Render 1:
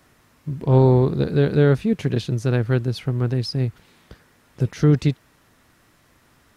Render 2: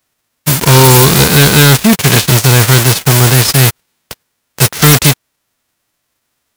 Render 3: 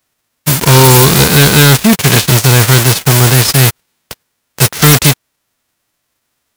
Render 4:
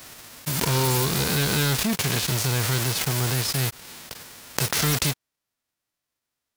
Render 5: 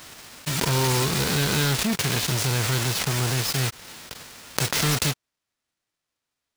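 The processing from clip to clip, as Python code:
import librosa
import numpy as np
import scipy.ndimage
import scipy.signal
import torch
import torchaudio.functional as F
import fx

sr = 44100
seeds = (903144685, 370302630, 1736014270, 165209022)

y1 = fx.envelope_flatten(x, sr, power=0.3)
y1 = fx.leveller(y1, sr, passes=5)
y2 = y1
y3 = fx.peak_eq(y2, sr, hz=4800.0, db=2.0, octaves=0.77)
y3 = fx.pre_swell(y3, sr, db_per_s=27.0)
y3 = F.gain(torch.from_numpy(y3), -17.5).numpy()
y4 = fx.sample_hold(y3, sr, seeds[0], rate_hz=17000.0, jitter_pct=0)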